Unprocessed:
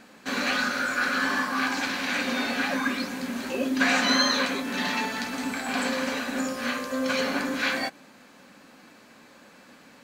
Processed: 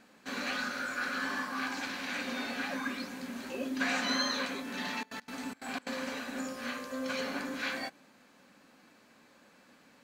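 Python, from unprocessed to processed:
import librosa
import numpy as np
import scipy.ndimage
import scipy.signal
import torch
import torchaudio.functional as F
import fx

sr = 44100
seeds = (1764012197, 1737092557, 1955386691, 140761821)

y = fx.step_gate(x, sr, bpm=179, pattern='xxx.xx.x.', floor_db=-24.0, edge_ms=4.5, at=(4.91, 5.93), fade=0.02)
y = F.gain(torch.from_numpy(y), -9.0).numpy()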